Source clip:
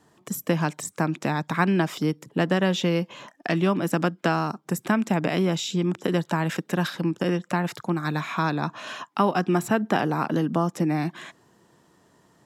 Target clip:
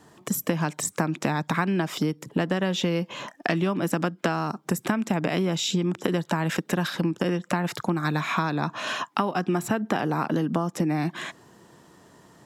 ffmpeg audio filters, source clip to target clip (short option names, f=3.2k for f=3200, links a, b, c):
-af "acompressor=threshold=-28dB:ratio=6,volume=6.5dB"